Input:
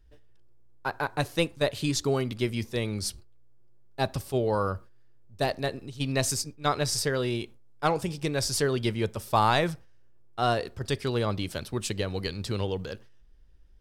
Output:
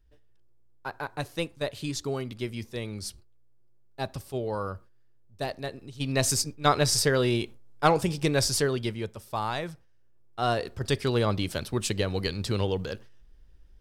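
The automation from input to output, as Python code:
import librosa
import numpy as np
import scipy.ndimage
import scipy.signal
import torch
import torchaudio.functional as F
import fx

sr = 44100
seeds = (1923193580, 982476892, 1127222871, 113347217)

y = fx.gain(x, sr, db=fx.line((5.75, -5.0), (6.39, 4.0), (8.38, 4.0), (9.22, -8.0), (9.73, -8.0), (10.86, 2.5)))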